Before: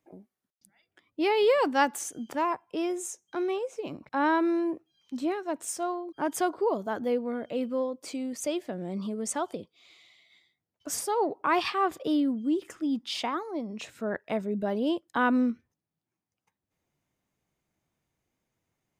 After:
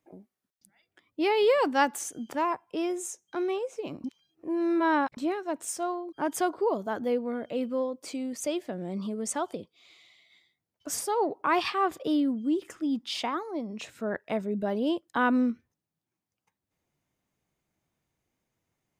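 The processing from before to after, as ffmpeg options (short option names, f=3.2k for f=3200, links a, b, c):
-filter_complex "[0:a]asplit=3[a][b][c];[a]atrim=end=4.042[d];[b]atrim=start=4.038:end=5.172,asetpts=PTS-STARTPTS,areverse[e];[c]atrim=start=5.168[f];[d][e]acrossfade=d=0.004:c1=hsin:c2=hsin[g];[g][f]acrossfade=d=0.004:c1=hsin:c2=hsin"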